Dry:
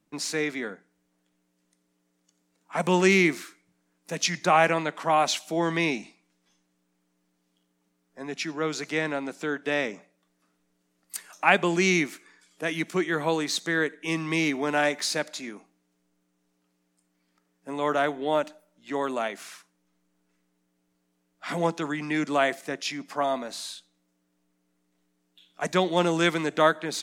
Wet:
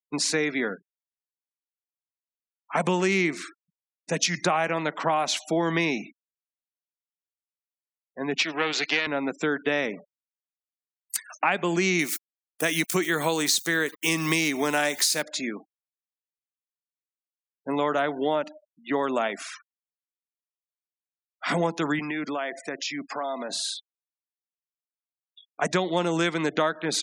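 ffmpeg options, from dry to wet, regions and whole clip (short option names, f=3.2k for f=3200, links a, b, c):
-filter_complex "[0:a]asettb=1/sr,asplit=3[a][b][c];[a]atrim=end=8.384[d];[b]atrim=start=8.38:end=9.07,asetpts=PTS-STARTPTS,afade=t=in:d=0.004:c=qsin,afade=t=out:st=0.686:d=0.004:c=qsin,aeval=exprs='if(lt(val(0),0),0.251*val(0),val(0))':c=same,highpass=220,lowpass=7.7k,equalizer=f=3k:t=o:w=1.7:g=11.5[e];[c]atrim=start=9.066[f];[d][e]acrossfade=d=0.004:c1=hsin:c2=qsin[g];[g][f]acrossfade=d=0.004:c1=qsin:c2=hsin,asettb=1/sr,asplit=3[h][i][j];[h]atrim=end=11.994[k];[i]atrim=start=11.99:end=15.22,asetpts=PTS-STARTPTS,afade=t=in:d=0.004:c=qsin,afade=t=out:st=3.226:d=0.004:c=qsin,aeval=exprs='val(0)*gte(abs(val(0)),0.00631)':c=same,aemphasis=mode=production:type=75kf[l];[j]atrim=start=15.216[m];[k][l]acrossfade=d=0.004:c1=hsin:c2=qsin[n];[n][m]acrossfade=d=0.004:c1=qsin:c2=hsin,asettb=1/sr,asplit=3[o][p][q];[o]atrim=end=21.994[r];[p]atrim=start=21.99:end=23.5,asetpts=PTS-STARTPTS,afade=t=in:d=0.004:c=qsin,afade=t=out:st=1.506:d=0.004:c=qsin,highpass=f=250:p=1,acompressor=threshold=-35dB:ratio=4:attack=3.2:release=140:knee=1:detection=peak[s];[q]atrim=start=23.496[t];[r][s]acrossfade=d=0.004:c1=hsin:c2=qsin[u];[u][t]acrossfade=d=0.004:c1=qsin:c2=hsin,afftfilt=real='re*gte(hypot(re,im),0.00631)':imag='im*gte(hypot(re,im),0.00631)':win_size=1024:overlap=0.75,acompressor=threshold=-28dB:ratio=6,volume=7dB"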